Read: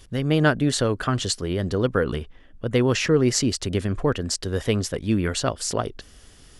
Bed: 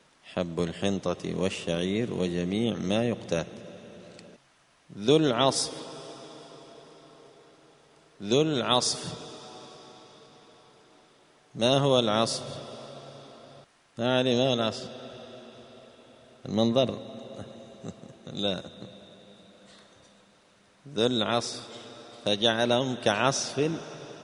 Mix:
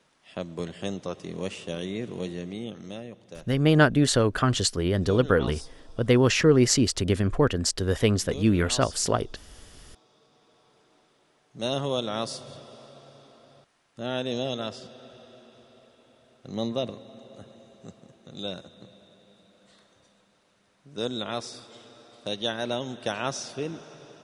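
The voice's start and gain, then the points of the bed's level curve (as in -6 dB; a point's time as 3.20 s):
3.35 s, +0.5 dB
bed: 2.28 s -4.5 dB
3.22 s -15.5 dB
9.51 s -15.5 dB
10.77 s -5.5 dB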